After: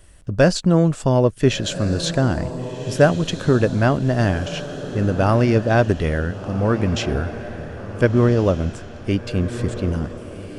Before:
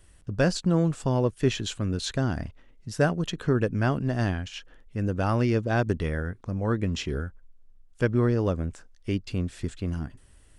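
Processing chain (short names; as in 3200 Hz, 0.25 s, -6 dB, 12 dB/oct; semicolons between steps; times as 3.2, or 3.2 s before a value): bell 610 Hz +5.5 dB 0.32 oct; diffused feedback echo 1.47 s, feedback 42%, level -11.5 dB; gain +7 dB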